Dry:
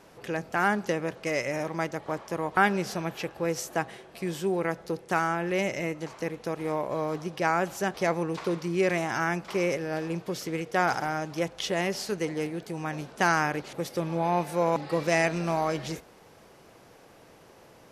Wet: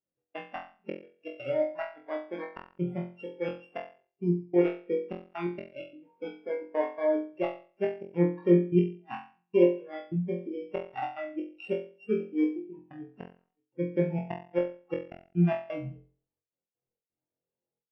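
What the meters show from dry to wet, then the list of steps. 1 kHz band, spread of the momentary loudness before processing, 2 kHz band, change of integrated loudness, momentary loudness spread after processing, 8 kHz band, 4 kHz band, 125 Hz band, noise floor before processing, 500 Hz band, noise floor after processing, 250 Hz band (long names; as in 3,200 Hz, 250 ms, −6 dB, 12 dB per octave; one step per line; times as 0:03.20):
−12.5 dB, 9 LU, −14.5 dB, −1.5 dB, 17 LU, below −40 dB, below −10 dB, +0.5 dB, −54 dBFS, −1.0 dB, below −85 dBFS, +1.0 dB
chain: samples sorted by size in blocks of 16 samples
hum removal 237.2 Hz, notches 2
gain on a spectral selection 0:04.24–0:04.54, 1,200–3,800 Hz −11 dB
noise reduction from a noise print of the clip's start 20 dB
in parallel at −4 dB: wrap-around overflow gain 17 dB
on the sum: gate pattern "xx.xxxxxx.x." 129 BPM −60 dB
gate with flip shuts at −13 dBFS, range −40 dB
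high-frequency loss of the air 320 metres
on a send: flutter between parallel walls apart 3.9 metres, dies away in 0.55 s
on the sum: every bin expanded away from the loudest bin 1.5 to 1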